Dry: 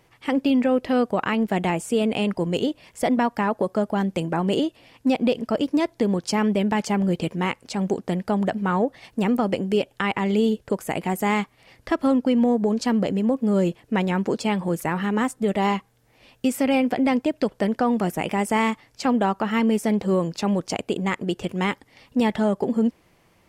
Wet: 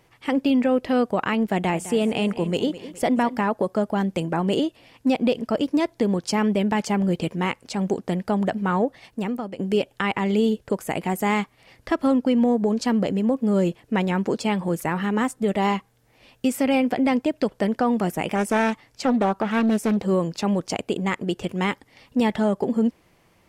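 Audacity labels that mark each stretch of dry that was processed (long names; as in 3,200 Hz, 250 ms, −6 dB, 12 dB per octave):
1.520000	3.410000	repeating echo 208 ms, feedback 44%, level −15 dB
8.850000	9.590000	fade out, to −14 dB
18.350000	19.970000	highs frequency-modulated by the lows depth 0.37 ms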